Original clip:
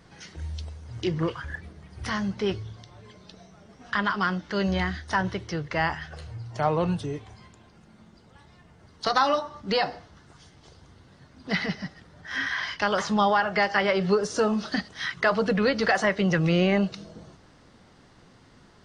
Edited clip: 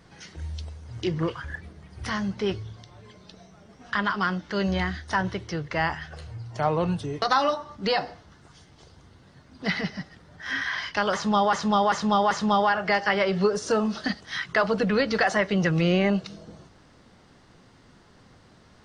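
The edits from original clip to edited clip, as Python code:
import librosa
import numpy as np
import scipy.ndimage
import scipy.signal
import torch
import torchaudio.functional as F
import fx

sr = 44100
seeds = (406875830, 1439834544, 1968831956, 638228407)

y = fx.edit(x, sr, fx.cut(start_s=7.22, length_s=1.85),
    fx.repeat(start_s=12.99, length_s=0.39, count=4), tone=tone)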